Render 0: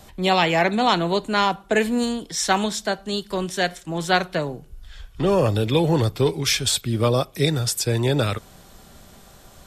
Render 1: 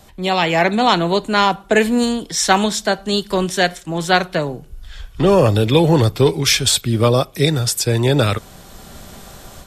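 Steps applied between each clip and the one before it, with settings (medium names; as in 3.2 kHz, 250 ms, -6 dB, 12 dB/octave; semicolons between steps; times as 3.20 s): level rider gain up to 10 dB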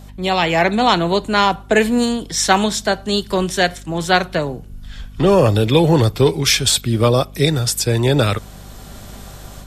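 hum 50 Hz, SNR 21 dB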